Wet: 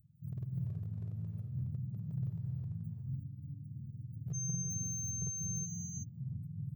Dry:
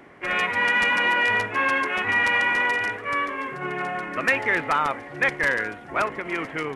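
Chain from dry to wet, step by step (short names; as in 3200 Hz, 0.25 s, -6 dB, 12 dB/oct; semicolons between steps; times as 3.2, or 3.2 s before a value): spectrum mirrored in octaves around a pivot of 560 Hz; inverse Chebyshev band-stop 650–7800 Hz, stop band 80 dB; bell 9600 Hz +12 dB 2 oct; notches 60/120/180/240 Hz; compressor 3:1, threshold -34 dBFS, peak gain reduction 9 dB; one-sided clip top -29 dBFS, bottom -28.5 dBFS; pre-emphasis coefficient 0.8; 4.33–5.65 whine 6300 Hz -47 dBFS; non-linear reverb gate 0.39 s rising, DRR 2 dB; gain +8.5 dB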